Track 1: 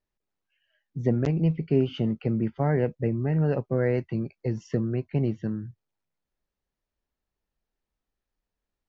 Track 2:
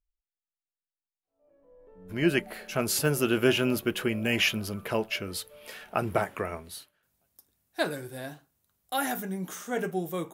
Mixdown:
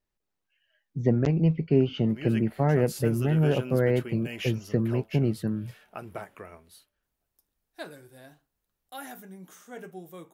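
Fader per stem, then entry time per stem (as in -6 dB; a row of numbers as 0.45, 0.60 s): +1.0, -11.5 dB; 0.00, 0.00 s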